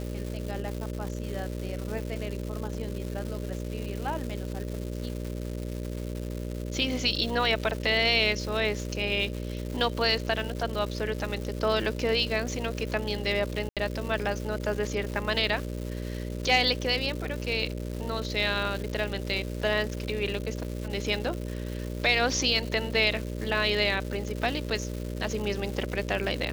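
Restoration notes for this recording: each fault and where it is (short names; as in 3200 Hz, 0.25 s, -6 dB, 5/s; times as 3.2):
buzz 60 Hz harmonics 10 -34 dBFS
crackle 390/s -34 dBFS
13.69–13.77 gap 77 ms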